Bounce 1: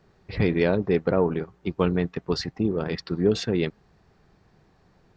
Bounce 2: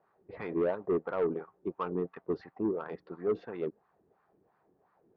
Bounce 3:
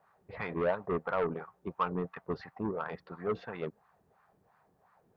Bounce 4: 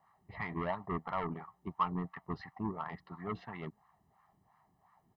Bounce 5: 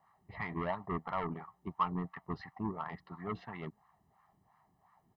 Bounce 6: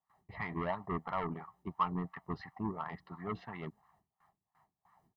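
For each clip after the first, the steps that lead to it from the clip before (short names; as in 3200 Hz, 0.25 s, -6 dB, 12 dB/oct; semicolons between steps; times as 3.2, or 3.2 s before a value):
wah 2.9 Hz 330–1200 Hz, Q 2.3; air absorption 160 m; soft clip -22.5 dBFS, distortion -14 dB
bell 340 Hz -14 dB 1.1 oct; gain +6.5 dB
comb 1 ms, depth 80%; gain -4 dB
nothing audible
gate with hold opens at -59 dBFS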